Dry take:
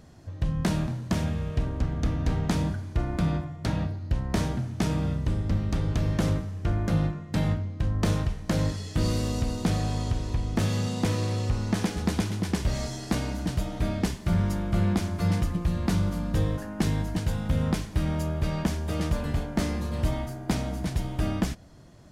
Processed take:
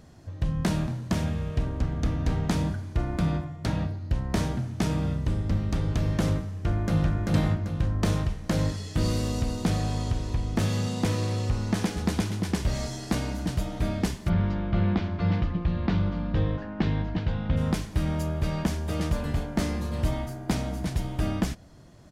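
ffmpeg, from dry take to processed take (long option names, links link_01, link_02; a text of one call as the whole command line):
ffmpeg -i in.wav -filter_complex "[0:a]asplit=2[link_01][link_02];[link_02]afade=type=in:start_time=6.54:duration=0.01,afade=type=out:start_time=7.16:duration=0.01,aecho=0:1:390|780|1170|1560|1950:0.891251|0.3565|0.1426|0.0570401|0.022816[link_03];[link_01][link_03]amix=inputs=2:normalize=0,asplit=3[link_04][link_05][link_06];[link_04]afade=type=out:start_time=14.28:duration=0.02[link_07];[link_05]lowpass=frequency=3900:width=0.5412,lowpass=frequency=3900:width=1.3066,afade=type=in:start_time=14.28:duration=0.02,afade=type=out:start_time=17.56:duration=0.02[link_08];[link_06]afade=type=in:start_time=17.56:duration=0.02[link_09];[link_07][link_08][link_09]amix=inputs=3:normalize=0" out.wav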